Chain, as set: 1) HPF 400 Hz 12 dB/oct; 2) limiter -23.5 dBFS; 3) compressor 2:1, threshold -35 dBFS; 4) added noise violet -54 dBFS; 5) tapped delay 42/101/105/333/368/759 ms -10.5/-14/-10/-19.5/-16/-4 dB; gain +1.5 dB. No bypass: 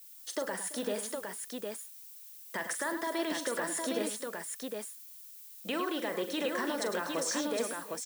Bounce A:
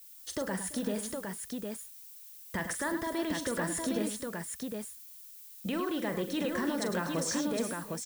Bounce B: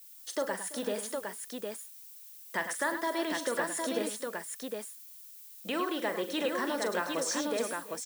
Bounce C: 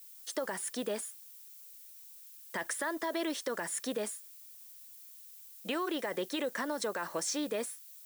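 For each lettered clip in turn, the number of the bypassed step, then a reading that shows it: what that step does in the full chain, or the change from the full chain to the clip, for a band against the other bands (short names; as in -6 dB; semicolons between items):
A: 1, 125 Hz band +13.0 dB; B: 2, mean gain reduction 1.5 dB; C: 5, echo-to-direct -2.0 dB to none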